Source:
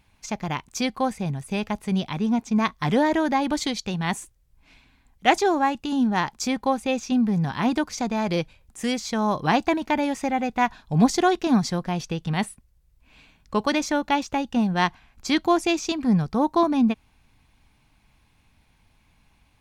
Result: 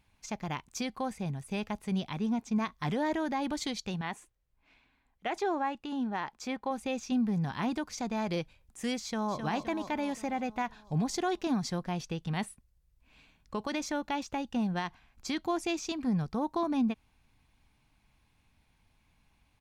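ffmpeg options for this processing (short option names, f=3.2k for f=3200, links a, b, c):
-filter_complex "[0:a]asettb=1/sr,asplit=3[a][b][c];[a]atrim=end=4.014[d];[b]atrim=start=4.01:end=6.71,asetpts=PTS-STARTPTS,afade=t=in:d=0.004:c=qsin,afade=t=out:st=2.696:d=0.004:c=qsin,bass=f=250:g=-8,treble=f=4k:g=-10[e];[c]atrim=start=6.706[f];[d][e]acrossfade=d=0.004:c1=hsin:c2=qsin[g];[g][f]acrossfade=d=0.004:c1=qsin:c2=hsin,asplit=2[h][i];[i]afade=t=in:st=9.02:d=0.01,afade=t=out:st=9.42:d=0.01,aecho=0:1:260|520|780|1040|1300|1560|1820|2080:0.398107|0.238864|0.143319|0.0859911|0.0515947|0.0309568|0.0185741|0.0111445[j];[h][j]amix=inputs=2:normalize=0,alimiter=limit=-15dB:level=0:latency=1:release=84,volume=-7.5dB"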